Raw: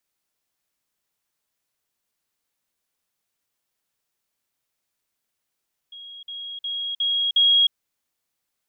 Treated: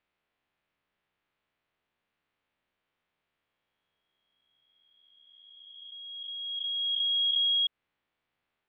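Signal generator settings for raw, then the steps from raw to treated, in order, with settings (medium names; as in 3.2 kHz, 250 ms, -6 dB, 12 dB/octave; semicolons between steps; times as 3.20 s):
level ladder 3.29 kHz -37.5 dBFS, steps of 6 dB, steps 5, 0.31 s 0.05 s
reverse spectral sustain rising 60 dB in 2.86 s; compression 3:1, threshold -22 dBFS; low-pass 3.1 kHz 24 dB/octave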